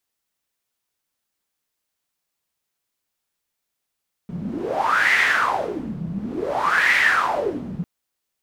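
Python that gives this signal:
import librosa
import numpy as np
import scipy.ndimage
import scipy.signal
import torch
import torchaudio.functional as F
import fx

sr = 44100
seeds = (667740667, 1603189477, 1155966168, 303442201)

y = fx.wind(sr, seeds[0], length_s=3.55, low_hz=170.0, high_hz=2000.0, q=7.4, gusts=2, swing_db=12.5)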